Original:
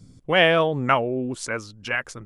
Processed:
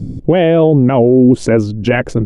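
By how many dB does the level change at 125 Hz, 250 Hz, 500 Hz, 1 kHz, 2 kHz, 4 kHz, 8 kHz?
+17.0 dB, +18.5 dB, +11.5 dB, +2.5 dB, 0.0 dB, −3.0 dB, can't be measured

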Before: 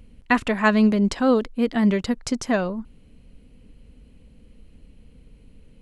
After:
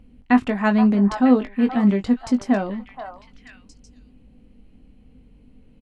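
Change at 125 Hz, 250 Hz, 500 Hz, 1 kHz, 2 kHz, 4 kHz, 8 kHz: +2.0 dB, +3.5 dB, −2.0 dB, +1.0 dB, −3.5 dB, −5.5 dB, can't be measured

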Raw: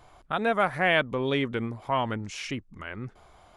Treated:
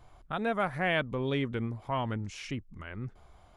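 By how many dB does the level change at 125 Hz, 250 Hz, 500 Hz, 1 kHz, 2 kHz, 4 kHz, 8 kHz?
0.0, −3.0, −5.5, −6.0, −6.5, −6.5, −6.5 decibels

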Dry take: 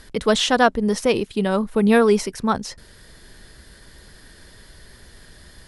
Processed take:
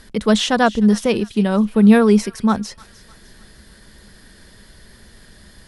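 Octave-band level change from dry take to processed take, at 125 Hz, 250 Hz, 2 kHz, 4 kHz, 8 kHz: +7.0, +7.0, 0.0, 0.0, 0.0 decibels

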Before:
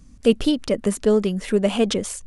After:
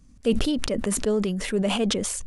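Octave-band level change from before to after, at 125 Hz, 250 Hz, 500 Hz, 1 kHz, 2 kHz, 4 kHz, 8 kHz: −2.0, −4.0, −6.0, −1.0, −0.5, −0.5, +2.5 decibels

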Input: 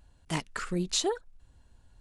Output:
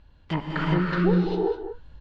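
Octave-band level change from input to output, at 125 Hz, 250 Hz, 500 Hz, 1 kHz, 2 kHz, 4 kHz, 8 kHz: +13.0 dB, +11.5 dB, +9.0 dB, +7.5 dB, +8.0 dB, −5.5 dB, below −25 dB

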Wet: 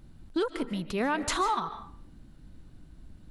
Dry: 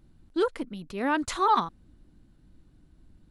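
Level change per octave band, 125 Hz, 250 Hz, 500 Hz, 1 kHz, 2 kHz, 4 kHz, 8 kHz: +4.0, −1.0, −2.5, −4.5, −1.0, +1.0, +3.5 decibels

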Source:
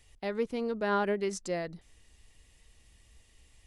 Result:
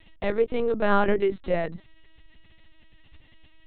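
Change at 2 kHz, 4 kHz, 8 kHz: +6.5 dB, +3.0 dB, below −35 dB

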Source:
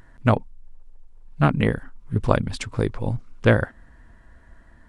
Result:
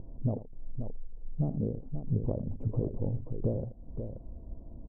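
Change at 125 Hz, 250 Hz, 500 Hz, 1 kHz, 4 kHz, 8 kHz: −8.5 dB, −10.0 dB, −13.0 dB, −25.0 dB, below −40 dB, below −35 dB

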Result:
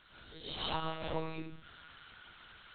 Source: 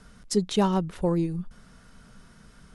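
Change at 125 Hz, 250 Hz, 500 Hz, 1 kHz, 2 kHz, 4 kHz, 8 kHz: −16.5 dB, −20.0 dB, −14.5 dB, −8.5 dB, −1.5 dB, −3.0 dB, below −40 dB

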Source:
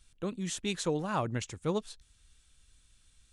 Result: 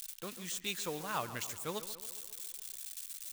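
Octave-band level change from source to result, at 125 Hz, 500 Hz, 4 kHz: −12.5, −8.5, −0.5 decibels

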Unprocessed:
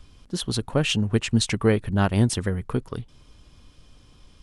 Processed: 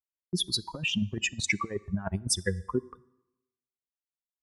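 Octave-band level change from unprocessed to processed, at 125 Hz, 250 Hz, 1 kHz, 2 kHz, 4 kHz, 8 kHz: −12.0, −9.5, −7.0, −1.5, −2.0, −1.0 decibels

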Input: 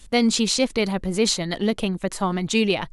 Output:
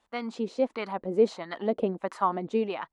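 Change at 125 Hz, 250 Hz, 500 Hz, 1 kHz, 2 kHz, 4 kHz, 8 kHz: −12.5 dB, −10.5 dB, −3.0 dB, −1.0 dB, −12.5 dB, −21.0 dB, below −25 dB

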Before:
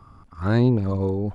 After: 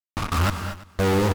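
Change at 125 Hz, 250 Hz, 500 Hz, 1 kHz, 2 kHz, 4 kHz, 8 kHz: −2.5 dB, −4.0 dB, +0.5 dB, +8.0 dB, +7.0 dB, +11.0 dB, can't be measured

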